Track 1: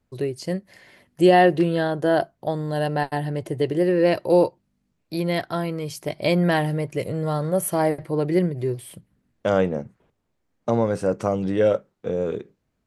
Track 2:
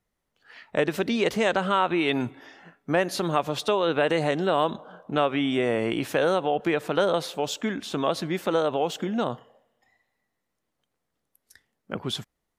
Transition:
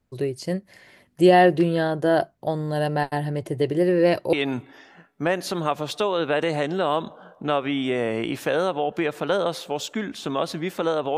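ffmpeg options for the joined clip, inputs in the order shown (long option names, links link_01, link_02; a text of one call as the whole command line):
ffmpeg -i cue0.wav -i cue1.wav -filter_complex "[0:a]apad=whole_dur=11.17,atrim=end=11.17,atrim=end=4.332[link_01];[1:a]atrim=start=2.008:end=8.85[link_02];[link_01][link_02]acrossfade=duration=0.004:curve1=hsin:curve2=hsin" out.wav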